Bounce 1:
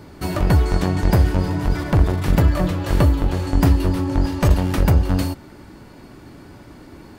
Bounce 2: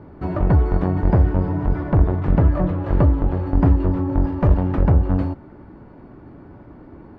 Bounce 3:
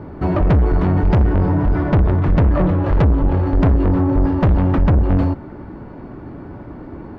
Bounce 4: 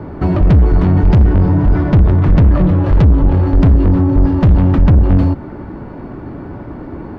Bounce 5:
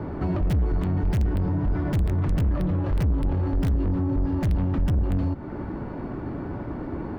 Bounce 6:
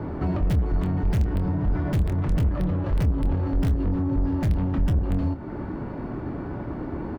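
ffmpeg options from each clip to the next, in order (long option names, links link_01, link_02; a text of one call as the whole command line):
ffmpeg -i in.wav -af "lowpass=1200" out.wav
ffmpeg -i in.wav -af "asoftclip=type=tanh:threshold=-18.5dB,volume=8.5dB" out.wav
ffmpeg -i in.wav -filter_complex "[0:a]acrossover=split=300|3000[link_01][link_02][link_03];[link_02]acompressor=threshold=-27dB:ratio=6[link_04];[link_01][link_04][link_03]amix=inputs=3:normalize=0,volume=5.5dB" out.wav
ffmpeg -i in.wav -filter_complex "[0:a]asplit=2[link_01][link_02];[link_02]aeval=exprs='(mod(1.5*val(0)+1,2)-1)/1.5':channel_layout=same,volume=-9.5dB[link_03];[link_01][link_03]amix=inputs=2:normalize=0,alimiter=limit=-11.5dB:level=0:latency=1:release=266,volume=-6.5dB" out.wav
ffmpeg -i in.wav -filter_complex "[0:a]asplit=2[link_01][link_02];[link_02]adelay=26,volume=-10.5dB[link_03];[link_01][link_03]amix=inputs=2:normalize=0" out.wav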